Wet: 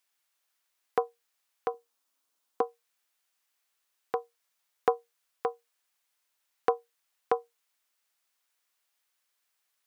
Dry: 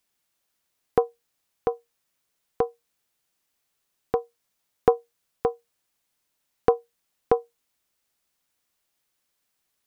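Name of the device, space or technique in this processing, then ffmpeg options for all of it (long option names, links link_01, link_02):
filter by subtraction: -filter_complex "[0:a]asplit=2[link_01][link_02];[link_02]lowpass=1300,volume=-1[link_03];[link_01][link_03]amix=inputs=2:normalize=0,asettb=1/sr,asplit=3[link_04][link_05][link_06];[link_04]atrim=end=1.744[link_07];[link_05]atrim=start=1.74:end=2.62,asetpts=PTS-STARTPTS,afade=type=in:duration=0.004:curve=qsin,afade=type=out:start_time=0.876:duration=0.004:curve=qsin,equalizer=frequency=125:width_type=o:width=1:gain=-10,equalizer=frequency=250:width_type=o:width=1:gain=12,equalizer=frequency=1000:width_type=o:width=1:gain=3,equalizer=frequency=2000:width_type=o:width=1:gain=-6[link_08];[link_06]atrim=start=2.616[link_09];[link_07][link_08]acrossfade=duration=0.004:curve1=hsin:curve2=qsin[link_10];[link_10][link_09]acrossfade=duration=0.004:curve1=qsin:curve2=hsin,volume=-2dB"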